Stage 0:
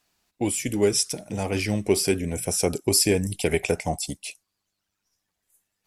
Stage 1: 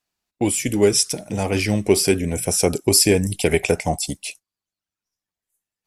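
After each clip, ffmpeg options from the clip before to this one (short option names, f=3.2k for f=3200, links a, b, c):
-af "agate=range=-15dB:threshold=-44dB:ratio=16:detection=peak,volume=5dB"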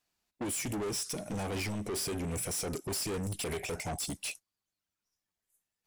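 -filter_complex "[0:a]asplit=2[a][b];[b]acompressor=threshold=-26dB:ratio=6,volume=1dB[c];[a][c]amix=inputs=2:normalize=0,alimiter=limit=-8dB:level=0:latency=1:release=49,asoftclip=type=tanh:threshold=-25dB,volume=-7.5dB"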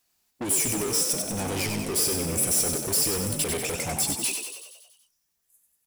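-filter_complex "[0:a]crystalizer=i=1.5:c=0,asplit=2[a][b];[b]asplit=8[c][d][e][f][g][h][i][j];[c]adelay=94,afreqshift=53,volume=-5.5dB[k];[d]adelay=188,afreqshift=106,volume=-9.9dB[l];[e]adelay=282,afreqshift=159,volume=-14.4dB[m];[f]adelay=376,afreqshift=212,volume=-18.8dB[n];[g]adelay=470,afreqshift=265,volume=-23.2dB[o];[h]adelay=564,afreqshift=318,volume=-27.7dB[p];[i]adelay=658,afreqshift=371,volume=-32.1dB[q];[j]adelay=752,afreqshift=424,volume=-36.6dB[r];[k][l][m][n][o][p][q][r]amix=inputs=8:normalize=0[s];[a][s]amix=inputs=2:normalize=0,volume=4dB"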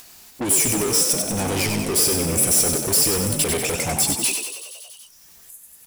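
-af "acompressor=mode=upward:threshold=-35dB:ratio=2.5,volume=6dB"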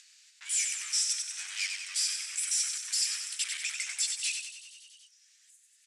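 -filter_complex "[0:a]asplit=2[a][b];[b]acrusher=bits=3:mix=0:aa=0.000001,volume=-11.5dB[c];[a][c]amix=inputs=2:normalize=0,asuperpass=centerf=3900:order=8:qfactor=0.59,volume=-9dB"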